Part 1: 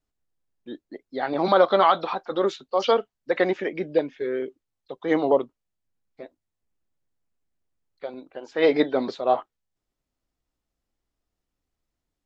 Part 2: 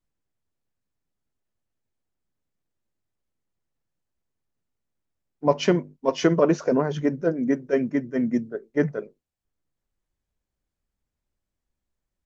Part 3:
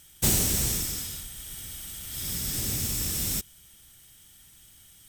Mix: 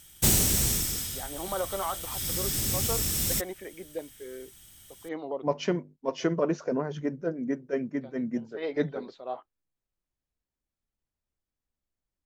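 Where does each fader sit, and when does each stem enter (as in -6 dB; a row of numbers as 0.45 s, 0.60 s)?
-14.5 dB, -7.5 dB, +1.0 dB; 0.00 s, 0.00 s, 0.00 s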